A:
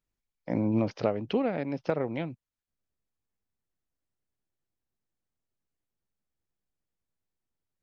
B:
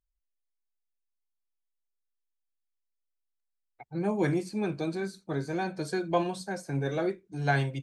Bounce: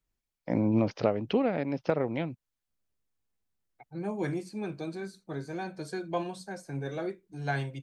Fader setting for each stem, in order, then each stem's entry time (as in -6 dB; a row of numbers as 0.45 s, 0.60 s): +1.0 dB, -5.0 dB; 0.00 s, 0.00 s